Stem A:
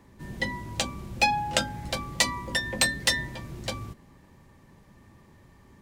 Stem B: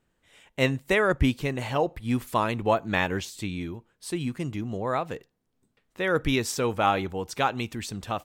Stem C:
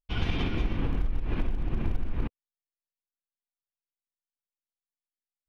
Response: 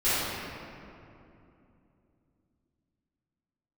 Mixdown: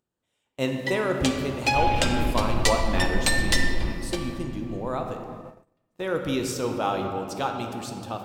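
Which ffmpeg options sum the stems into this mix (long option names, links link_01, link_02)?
-filter_complex "[0:a]highpass=frequency=210:width=0.5412,highpass=frequency=210:width=1.3066,adelay=450,volume=-2dB,asplit=2[link_01][link_02];[link_02]volume=-17dB[link_03];[1:a]equalizer=frequency=2000:width_type=o:width=0.88:gain=-9,acompressor=mode=upward:threshold=-36dB:ratio=2.5,highpass=frequency=110:poles=1,volume=-3dB,asplit=2[link_04][link_05];[link_05]volume=-17dB[link_06];[2:a]adelay=1650,volume=-0.5dB,asplit=2[link_07][link_08];[link_08]volume=-20dB[link_09];[3:a]atrim=start_sample=2205[link_10];[link_03][link_06][link_09]amix=inputs=3:normalize=0[link_11];[link_11][link_10]afir=irnorm=-1:irlink=0[link_12];[link_01][link_04][link_07][link_12]amix=inputs=4:normalize=0,agate=range=-28dB:threshold=-39dB:ratio=16:detection=peak"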